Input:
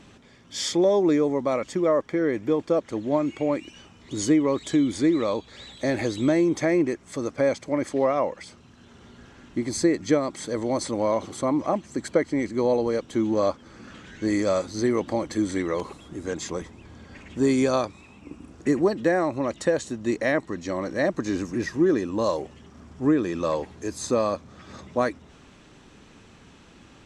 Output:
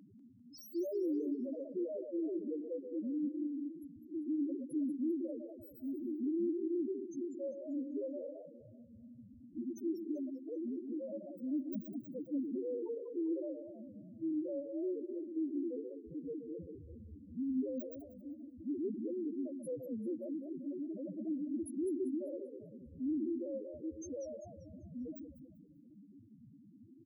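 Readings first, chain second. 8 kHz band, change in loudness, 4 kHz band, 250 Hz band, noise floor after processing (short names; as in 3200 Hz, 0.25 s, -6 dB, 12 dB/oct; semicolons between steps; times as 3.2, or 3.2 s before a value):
under -25 dB, -15.0 dB, under -30 dB, -12.0 dB, -59 dBFS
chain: FFT order left unsorted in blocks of 32 samples; HPF 68 Hz 24 dB/oct; bell 320 Hz +3 dB 0.83 oct; in parallel at 0 dB: compressor, threshold -30 dBFS, peak gain reduction 16 dB; on the sum: soft clip -23.5 dBFS, distortion -7 dB; on a send: echo 0.128 s -8 dB; on the sum: loudest bins only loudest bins 1; dynamic EQ 890 Hz, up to -5 dB, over -55 dBFS, Q 1.6; warbling echo 0.196 s, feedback 39%, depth 219 cents, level -9.5 dB; gain -3 dB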